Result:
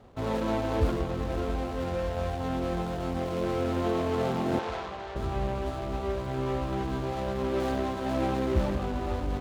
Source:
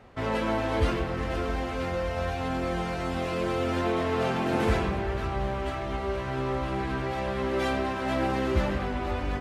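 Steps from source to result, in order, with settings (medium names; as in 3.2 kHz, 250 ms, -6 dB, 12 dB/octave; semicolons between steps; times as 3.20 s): median filter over 25 samples; 4.59–5.16 s: three-band isolator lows -17 dB, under 560 Hz, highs -17 dB, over 6.5 kHz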